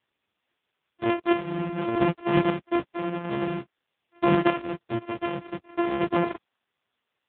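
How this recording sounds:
a buzz of ramps at a fixed pitch in blocks of 128 samples
chopped level 0.5 Hz, depth 65%, duty 25%
a quantiser's noise floor 12 bits, dither triangular
AMR narrowband

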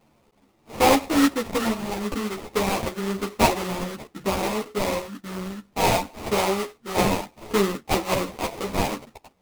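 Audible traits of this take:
aliases and images of a low sample rate 1,600 Hz, jitter 20%
sample-and-hold tremolo 1.2 Hz, depth 55%
a shimmering, thickened sound

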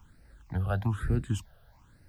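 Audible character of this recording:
a quantiser's noise floor 12 bits, dither triangular
phaser sweep stages 8, 1.1 Hz, lowest notch 280–1,000 Hz

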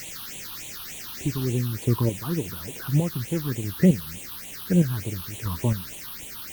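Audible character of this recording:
chopped level 1.1 Hz, depth 60%, duty 30%
a quantiser's noise floor 6 bits, dither triangular
phaser sweep stages 6, 3.4 Hz, lowest notch 540–1,400 Hz
Opus

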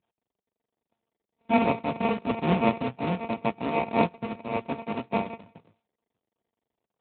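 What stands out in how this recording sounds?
a buzz of ramps at a fixed pitch in blocks of 64 samples
tremolo triangle 5.3 Hz, depth 70%
aliases and images of a low sample rate 1,600 Hz, jitter 0%
AMR narrowband

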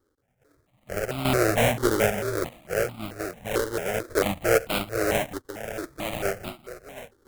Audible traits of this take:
aliases and images of a low sample rate 1,000 Hz, jitter 20%
sample-and-hold tremolo 2.4 Hz, depth 75%
notches that jump at a steady rate 4.5 Hz 680–1,700 Hz

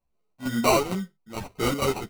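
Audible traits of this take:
aliases and images of a low sample rate 1,700 Hz, jitter 0%
chopped level 2.2 Hz, depth 65%, duty 80%
a shimmering, thickened sound

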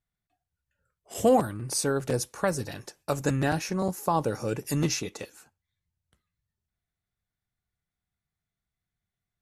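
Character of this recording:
background noise floor −89 dBFS
spectral slope −5.0 dB per octave

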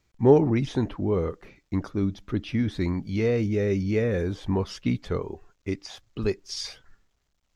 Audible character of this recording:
background noise floor −73 dBFS
spectral slope −7.0 dB per octave

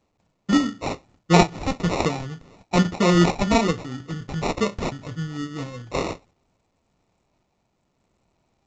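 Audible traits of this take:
sample-and-hold tremolo
aliases and images of a low sample rate 1,600 Hz, jitter 0%
A-law companding

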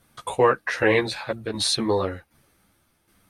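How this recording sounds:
tremolo saw down 1.3 Hz, depth 60%
a shimmering, thickened sound

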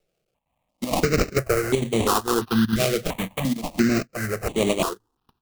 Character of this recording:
a quantiser's noise floor 12 bits, dither triangular
chopped level 2.2 Hz, depth 60%, duty 85%
aliases and images of a low sample rate 1,800 Hz, jitter 20%
notches that jump at a steady rate 2.9 Hz 260–5,100 Hz

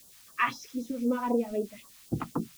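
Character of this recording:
a quantiser's noise floor 10 bits, dither triangular
phaser sweep stages 2, 3.9 Hz, lowest notch 360–2,100 Hz

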